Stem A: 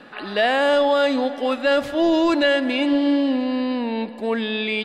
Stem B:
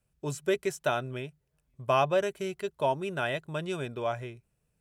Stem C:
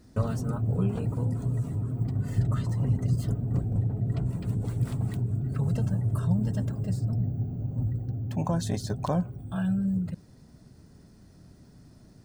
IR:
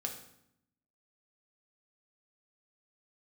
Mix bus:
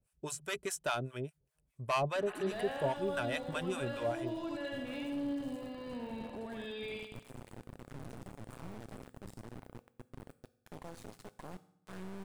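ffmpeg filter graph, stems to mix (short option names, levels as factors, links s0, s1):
-filter_complex "[0:a]acompressor=threshold=0.0501:ratio=6,adelay=2150,volume=0.531,asplit=2[s0][s1];[s1]volume=0.266[s2];[1:a]asoftclip=type=tanh:threshold=0.0841,acrossover=split=710[s3][s4];[s3]aeval=exprs='val(0)*(1-1/2+1/2*cos(2*PI*4.9*n/s))':c=same[s5];[s4]aeval=exprs='val(0)*(1-1/2-1/2*cos(2*PI*4.9*n/s))':c=same[s6];[s5][s6]amix=inputs=2:normalize=0,volume=1.12[s7];[2:a]highpass=f=390:p=1,acrusher=bits=3:dc=4:mix=0:aa=0.000001,adelay=2350,volume=0.299,asplit=2[s8][s9];[s9]volume=0.2[s10];[s0][s8]amix=inputs=2:normalize=0,lowpass=f=1500:p=1,alimiter=level_in=3.98:limit=0.0631:level=0:latency=1:release=106,volume=0.251,volume=1[s11];[3:a]atrim=start_sample=2205[s12];[s10][s12]afir=irnorm=-1:irlink=0[s13];[s2]aecho=0:1:81|162|243|324|405|486|567:1|0.48|0.23|0.111|0.0531|0.0255|0.0122[s14];[s7][s11][s13][s14]amix=inputs=4:normalize=0,equalizer=f=9100:t=o:w=0.64:g=6"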